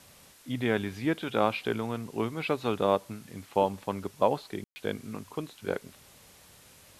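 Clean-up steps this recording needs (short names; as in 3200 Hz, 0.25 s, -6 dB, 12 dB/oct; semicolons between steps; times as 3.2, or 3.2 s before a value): room tone fill 4.64–4.76; denoiser 18 dB, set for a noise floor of -56 dBFS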